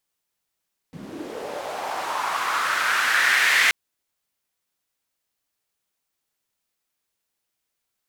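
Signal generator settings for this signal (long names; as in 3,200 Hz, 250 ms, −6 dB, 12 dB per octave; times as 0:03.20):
filter sweep on noise white, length 2.78 s bandpass, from 150 Hz, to 2,000 Hz, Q 3.2, linear, gain ramp +11 dB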